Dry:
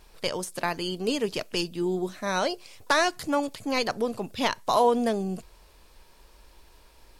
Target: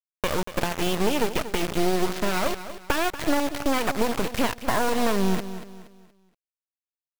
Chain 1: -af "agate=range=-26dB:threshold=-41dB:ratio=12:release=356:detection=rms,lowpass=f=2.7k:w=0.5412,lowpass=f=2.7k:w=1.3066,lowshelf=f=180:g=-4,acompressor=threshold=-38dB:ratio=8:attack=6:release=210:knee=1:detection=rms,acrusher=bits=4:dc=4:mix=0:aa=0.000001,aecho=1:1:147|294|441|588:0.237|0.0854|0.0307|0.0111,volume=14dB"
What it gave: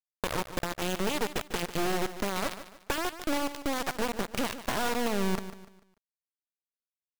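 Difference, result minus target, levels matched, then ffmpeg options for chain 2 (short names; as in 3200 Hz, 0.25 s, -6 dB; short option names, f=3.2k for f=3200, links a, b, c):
compressor: peak gain reduction +8 dB; echo 89 ms early
-af "agate=range=-26dB:threshold=-41dB:ratio=12:release=356:detection=rms,lowpass=f=2.7k:w=0.5412,lowpass=f=2.7k:w=1.3066,lowshelf=f=180:g=-4,acompressor=threshold=-29dB:ratio=8:attack=6:release=210:knee=1:detection=rms,acrusher=bits=4:dc=4:mix=0:aa=0.000001,aecho=1:1:236|472|708|944:0.237|0.0854|0.0307|0.0111,volume=14dB"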